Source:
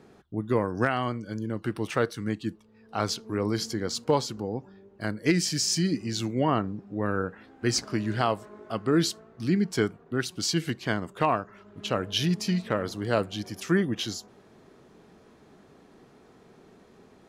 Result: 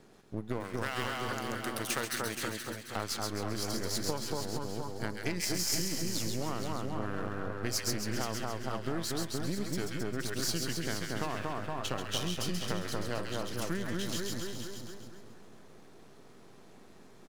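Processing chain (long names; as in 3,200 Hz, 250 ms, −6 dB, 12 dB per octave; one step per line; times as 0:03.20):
gain on one half-wave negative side −12 dB
0:00.60–0:02.96: spectral tilt +3 dB per octave
echo with a time of its own for lows and highs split 1,600 Hz, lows 233 ms, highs 134 ms, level −3 dB
downward compressor, threshold −29 dBFS, peak gain reduction 11.5 dB
high-shelf EQ 4,700 Hz +8.5 dB
single-tap delay 474 ms −8.5 dB
level −1.5 dB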